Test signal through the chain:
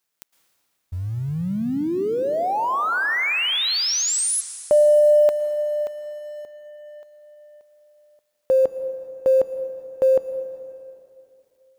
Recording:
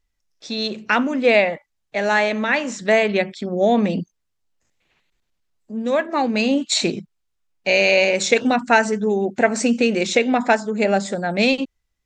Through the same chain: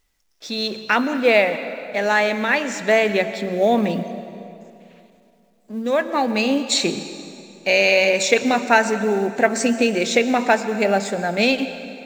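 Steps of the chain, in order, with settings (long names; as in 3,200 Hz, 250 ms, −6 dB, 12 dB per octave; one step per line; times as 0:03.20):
mu-law and A-law mismatch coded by mu
low-shelf EQ 140 Hz −7 dB
dense smooth reverb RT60 2.8 s, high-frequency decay 0.75×, pre-delay 100 ms, DRR 11 dB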